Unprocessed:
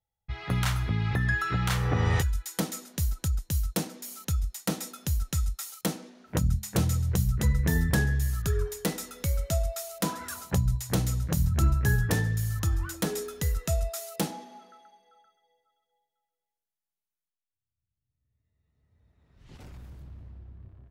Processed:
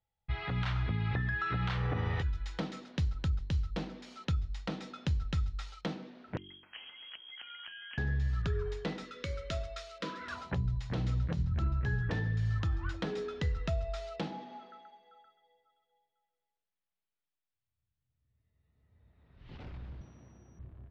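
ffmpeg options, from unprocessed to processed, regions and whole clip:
-filter_complex "[0:a]asettb=1/sr,asplit=3[a][b][c];[a]atrim=end=6.374[d];[b]atrim=start=6.37:end=7.98,asetpts=PTS-STARTPTS,afade=t=in:d=0.004:c=qsin,afade=t=out:st=1.606:d=0.004:c=qsin,highpass=370,acompressor=threshold=-43dB:ratio=20:attack=3.2:release=140:knee=1:detection=peak,lowpass=f=2.9k:t=q:w=0.5098,lowpass=f=2.9k:t=q:w=0.6013,lowpass=f=2.9k:t=q:w=0.9,lowpass=f=2.9k:t=q:w=2.563,afreqshift=-3400[e];[c]atrim=start=7.976[f];[d][e]acrossfade=d=0.004:c1=hsin:c2=qsin[g];[g][f]acrossfade=d=0.004:c1=qsin:c2=hsin,asettb=1/sr,asplit=3[h][i][j];[h]atrim=end=9.054[k];[i]atrim=start=9.05:end=10.28,asetpts=PTS-STARTPTS,afade=t=in:d=0.004:c=qsin,afade=t=out:st=1.226:d=0.004:c=qsin,asuperstop=centerf=790:order=4:qfactor=1.8,bass=f=250:g=-11,treble=f=4k:g=2[l];[j]atrim=start=10.276[m];[k][l]acrossfade=d=0.004:c1=hsin:c2=qsin[n];[n][m]acrossfade=d=0.004:c1=qsin:c2=hsin,asettb=1/sr,asplit=3[o][p][q];[o]atrim=end=20.014[r];[p]atrim=start=20.01:end=20.59,asetpts=PTS-STARTPTS,afade=t=in:d=0.004:c=qsin,afade=t=out:st=0.576:d=0.004:c=qsin,highpass=170,aeval=exprs='val(0)+0.001*sin(2*PI*5800*n/s)':c=same[s];[q]atrim=start=20.586[t];[r][s]acrossfade=d=0.004:c1=hsin:c2=qsin[u];[u][t]acrossfade=d=0.004:c1=qsin:c2=hsin,lowpass=f=4k:w=0.5412,lowpass=f=4k:w=1.3066,bandreject=f=47.77:t=h:w=4,bandreject=f=95.54:t=h:w=4,bandreject=f=143.31:t=h:w=4,bandreject=f=191.08:t=h:w=4,bandreject=f=238.85:t=h:w=4,bandreject=f=286.62:t=h:w=4,bandreject=f=334.39:t=h:w=4,bandreject=f=382.16:t=h:w=4,bandreject=f=429.93:t=h:w=4,alimiter=level_in=1dB:limit=-24dB:level=0:latency=1:release=333,volume=-1dB,volume=1dB"

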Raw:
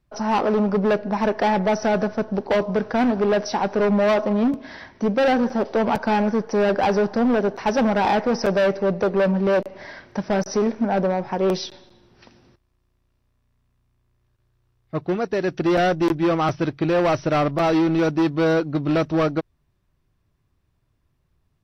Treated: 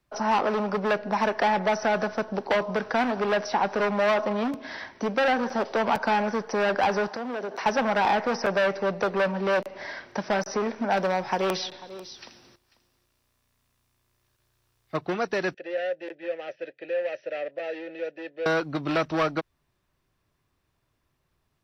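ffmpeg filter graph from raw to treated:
-filter_complex "[0:a]asettb=1/sr,asplit=3[a][b][c];[a]atrim=end=7.084[d];[b]atrim=start=7.08:end=7.66,asetpts=PTS-STARTPTS,afade=t=in:d=0.004:c=qsin,afade=t=out:st=0.576:d=0.004:c=qsin,highpass=f=300:p=1,acompressor=threshold=-26dB:ratio=12:attack=3.2:release=140:knee=1:detection=peak[e];[c]atrim=start=7.656[f];[d][e]acrossfade=d=0.004:c1=hsin:c2=qsin[g];[g][f]acrossfade=d=0.004:c1=qsin:c2=hsin,asettb=1/sr,asplit=3[h][i][j];[h]atrim=end=10.904[k];[i]atrim=start=10.9:end=14.97,asetpts=PTS-STARTPTS,afade=t=in:d=0.004:c=qsin,afade=t=out:st=4.066:d=0.004:c=qsin,highshelf=f=3.5k:g=10,aecho=1:1:493:0.1,atrim=end_sample=179487[l];[j]atrim=start=14.966[m];[k][l]acrossfade=d=0.004:c1=hsin:c2=qsin[n];[n][m]acrossfade=d=0.004:c1=qsin:c2=hsin,asettb=1/sr,asplit=3[o][p][q];[o]atrim=end=15.544[r];[p]atrim=start=15.54:end=18.46,asetpts=PTS-STARTPTS,afade=t=in:d=0.004:c=qsin,afade=t=out:st=2.916:d=0.004:c=qsin,asplit=3[s][t][u];[s]bandpass=f=530:t=q:w=8,volume=0dB[v];[t]bandpass=f=1.84k:t=q:w=8,volume=-6dB[w];[u]bandpass=f=2.48k:t=q:w=8,volume=-9dB[x];[v][w][x]amix=inputs=3:normalize=0,lowshelf=f=320:g=-7[y];[q]atrim=start=18.456[z];[r][y]acrossfade=d=0.004:c1=hsin:c2=qsin[aa];[aa][z]acrossfade=d=0.004:c1=qsin:c2=hsin,lowshelf=f=250:g=-12,acrossover=split=230|700|3000[ab][ac][ad][ae];[ab]acompressor=threshold=-36dB:ratio=4[af];[ac]acompressor=threshold=-33dB:ratio=4[ag];[ad]acompressor=threshold=-24dB:ratio=4[ah];[ae]acompressor=threshold=-43dB:ratio=4[ai];[af][ag][ah][ai]amix=inputs=4:normalize=0,volume=2.5dB"

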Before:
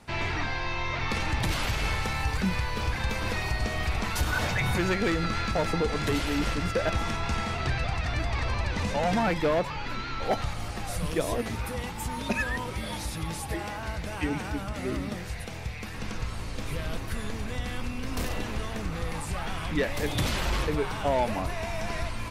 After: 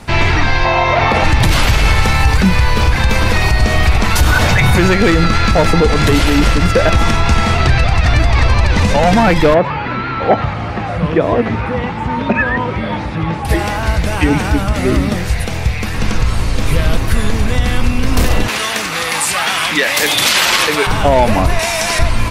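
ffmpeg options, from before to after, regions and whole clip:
-filter_complex "[0:a]asettb=1/sr,asplit=3[a][b][c];[a]atrim=end=0.654[d];[b]atrim=start=0.65:end=1.24,asetpts=PTS-STARTPTS,afade=t=in:d=0.004:c=qsin,afade=t=out:st=0.586:d=0.004:c=qsin,acrossover=split=3800[e][f];[f]acompressor=threshold=-48dB:ratio=4:attack=1:release=60[g];[e][g]amix=inputs=2:normalize=0,highpass=f=93:p=1,equalizer=f=670:w=1.7:g=12[h];[c]atrim=start=1.236[i];[d][h]acrossfade=d=0.004:c1=hsin:c2=qsin[j];[j][i]acrossfade=d=0.004:c1=qsin:c2=hsin,asettb=1/sr,asplit=3[k][l][m];[k]atrim=end=9.544[n];[l]atrim=start=9.54:end=13.45,asetpts=PTS-STARTPTS,afade=t=in:d=0.004:c=qsin,afade=t=out:st=3.906:d=0.004:c=qsin,acrossover=split=2500[o][p];[p]acompressor=threshold=-54dB:ratio=4:attack=1:release=60[q];[o][q]amix=inputs=2:normalize=0,highpass=110,lowpass=4k[r];[m]atrim=start=13.446[s];[n][r]acrossfade=d=0.004:c1=hsin:c2=qsin[t];[t][s]acrossfade=d=0.004:c1=qsin:c2=hsin,asettb=1/sr,asplit=3[u][v][w];[u]atrim=end=18.484[x];[v]atrim=start=18.48:end=20.87,asetpts=PTS-STARTPTS,afade=t=in:d=0.004:c=qsin,afade=t=out:st=2.386:d=0.004:c=qsin,highpass=200,tiltshelf=f=810:g=-8.5[y];[w]atrim=start=20.866[z];[x][y]acrossfade=d=0.004:c1=hsin:c2=qsin[aa];[aa][z]acrossfade=d=0.004:c1=qsin:c2=hsin,asettb=1/sr,asplit=3[ab][ac][ad];[ab]atrim=end=21.594[ae];[ac]atrim=start=21.59:end=21.99,asetpts=PTS-STARTPTS,afade=t=in:d=0.004:c=qsin,afade=t=out:st=0.396:d=0.004:c=qsin,lowpass=9.2k,aemphasis=mode=production:type=riaa[af];[ad]atrim=start=21.986[ag];[ae][af]acrossfade=d=0.004:c1=hsin:c2=qsin[ah];[ah][ag]acrossfade=d=0.004:c1=qsin:c2=hsin,lowshelf=f=95:g=5.5,alimiter=level_in=17.5dB:limit=-1dB:release=50:level=0:latency=1,volume=-1dB"

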